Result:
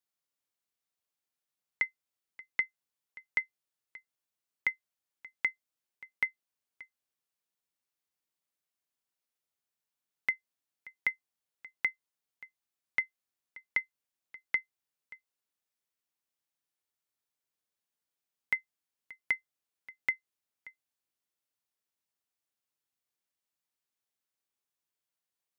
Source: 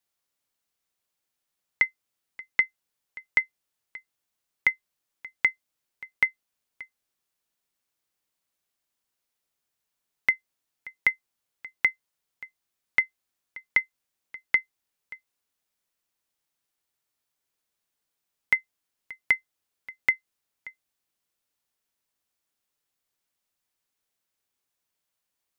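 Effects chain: HPF 69 Hz; gain -8 dB

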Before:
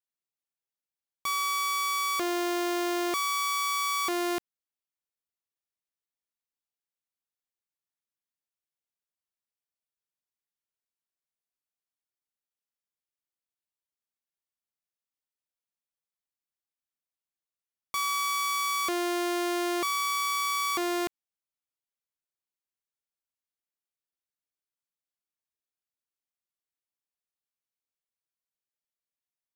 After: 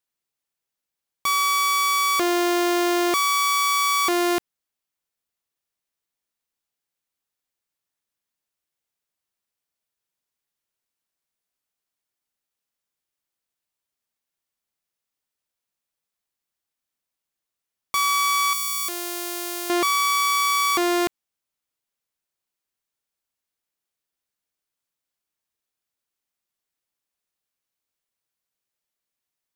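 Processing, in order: 18.53–19.7 pre-emphasis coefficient 0.8; gain +8 dB

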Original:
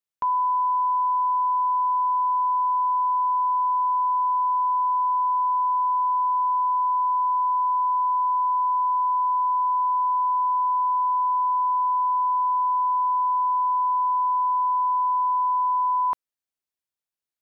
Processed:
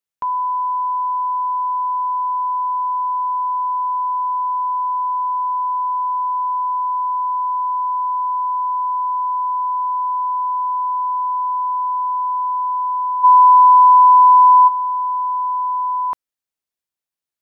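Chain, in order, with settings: 13.23–14.67 bell 1000 Hz -> 930 Hz +12 dB 1.4 oct; gain +2 dB

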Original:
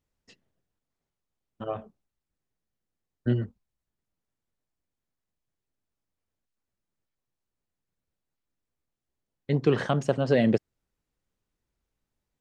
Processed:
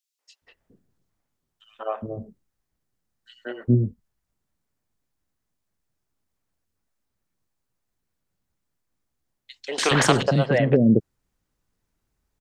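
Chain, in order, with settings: three bands offset in time highs, mids, lows 0.19/0.42 s, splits 470/3000 Hz; 9.78–10.23 spectral compressor 2:1; gain +7 dB

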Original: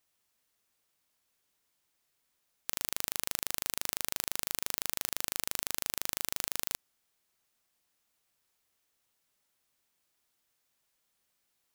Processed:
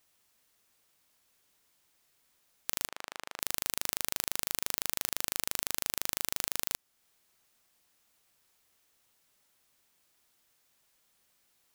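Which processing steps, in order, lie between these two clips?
in parallel at +1 dB: compressor, threshold -45 dBFS, peak gain reduction 17.5 dB; 2.88–3.4 on the sum: band-pass 970 Hz, Q 0.66

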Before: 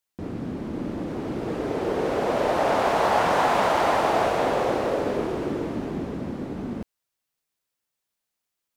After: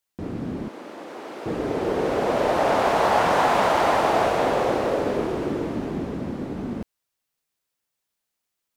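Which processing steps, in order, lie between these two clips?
0.68–1.46 HPF 590 Hz 12 dB/oct; gain +1.5 dB

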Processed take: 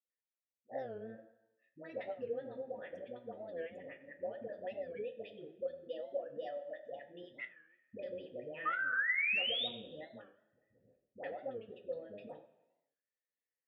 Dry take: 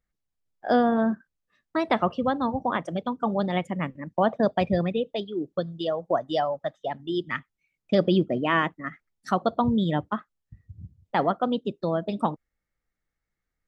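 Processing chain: octaver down 1 oct, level +2 dB; dynamic EQ 1800 Hz, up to -5 dB, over -39 dBFS, Q 0.82; compressor, threshold -23 dBFS, peak gain reduction 9 dB; vowel filter e; painted sound rise, 8.57–9.58, 1200–3800 Hz -33 dBFS; dispersion highs, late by 99 ms, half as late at 560 Hz; reverb RT60 1.0 s, pre-delay 3 ms, DRR 3.5 dB; record warp 45 rpm, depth 160 cents; gain -2 dB

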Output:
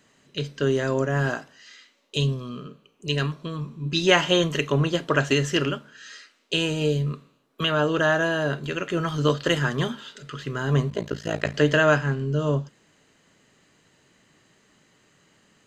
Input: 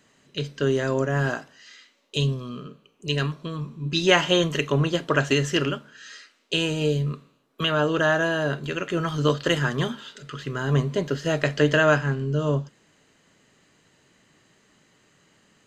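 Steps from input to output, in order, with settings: 10.9–11.54 AM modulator 56 Hz, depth 90%

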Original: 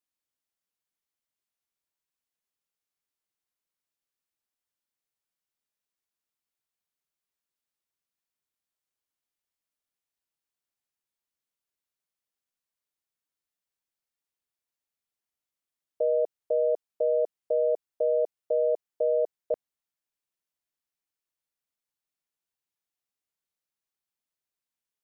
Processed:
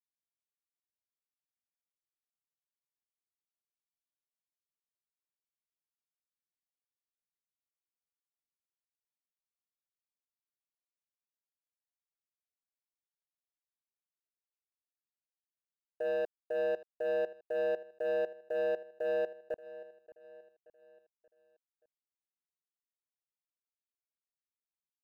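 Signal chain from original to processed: gate -22 dBFS, range -13 dB; Bessel low-pass 820 Hz; sample leveller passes 2; on a send: feedback echo 0.579 s, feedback 46%, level -18 dB

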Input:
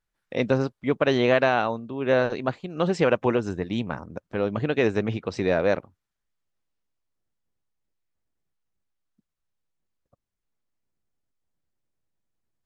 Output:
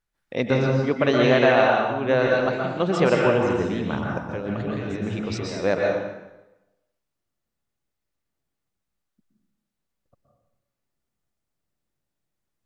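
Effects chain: 3.63–5.64 negative-ratio compressor -31 dBFS, ratio -1; plate-style reverb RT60 0.99 s, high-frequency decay 0.85×, pre-delay 0.11 s, DRR -1.5 dB

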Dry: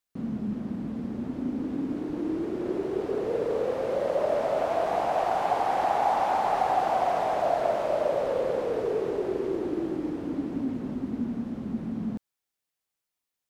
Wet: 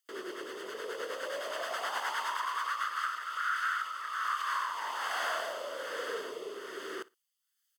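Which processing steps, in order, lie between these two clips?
HPF 740 Hz 12 dB/oct; comb 1.1 ms, depth 78%; compressor 16:1, threshold -36 dBFS, peak gain reduction 18 dB; rotary speaker horn 5.5 Hz, later 0.7 Hz, at 4.58; feedback echo 0.102 s, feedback 19%, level -21.5 dB; speed mistake 45 rpm record played at 78 rpm; gain +9 dB

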